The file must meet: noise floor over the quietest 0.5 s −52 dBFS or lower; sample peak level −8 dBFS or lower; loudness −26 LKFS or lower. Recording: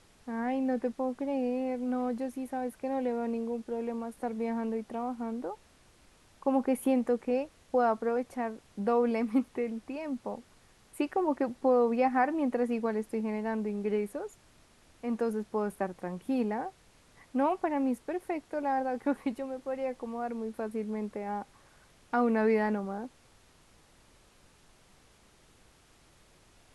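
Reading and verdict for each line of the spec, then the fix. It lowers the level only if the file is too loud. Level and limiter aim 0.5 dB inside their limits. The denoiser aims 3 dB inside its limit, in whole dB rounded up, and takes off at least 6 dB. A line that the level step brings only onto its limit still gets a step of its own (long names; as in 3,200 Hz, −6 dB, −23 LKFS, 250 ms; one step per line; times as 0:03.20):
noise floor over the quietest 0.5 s −62 dBFS: in spec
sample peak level −15.0 dBFS: in spec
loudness −32.0 LKFS: in spec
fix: no processing needed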